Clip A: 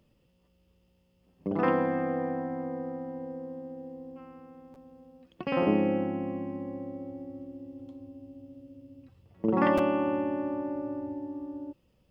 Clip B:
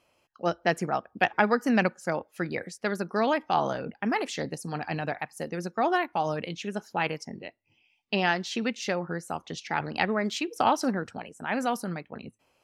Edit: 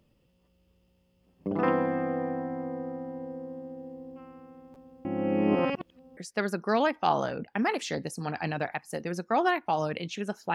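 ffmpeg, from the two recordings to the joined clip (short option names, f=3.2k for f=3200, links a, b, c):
-filter_complex "[0:a]apad=whole_dur=10.54,atrim=end=10.54,asplit=2[a][b];[a]atrim=end=5.052[c];[b]atrim=start=5.048:end=6.172,asetpts=PTS-STARTPTS,areverse[d];[1:a]atrim=start=2.638:end=7.01[e];[c][d]acrossfade=d=0.004:c1=hsin:c2=hsin[f];[f][e]acrossfade=d=0.004:c1=hsin:c2=hsin"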